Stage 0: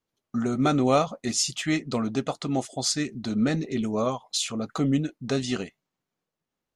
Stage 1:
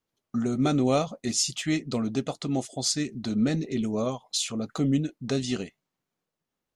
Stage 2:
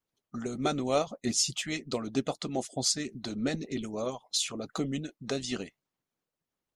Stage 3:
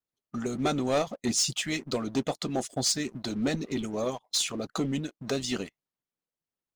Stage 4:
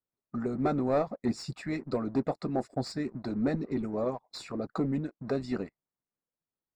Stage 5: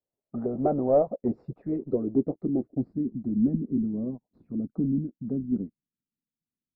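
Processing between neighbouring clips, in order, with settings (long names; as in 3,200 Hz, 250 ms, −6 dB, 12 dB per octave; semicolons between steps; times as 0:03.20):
dynamic equaliser 1,200 Hz, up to −7 dB, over −41 dBFS, Q 0.77
harmonic and percussive parts rebalanced harmonic −11 dB
leveller curve on the samples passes 2; level −4 dB
moving average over 14 samples
low-pass filter sweep 630 Hz → 240 Hz, 0:00.87–0:03.23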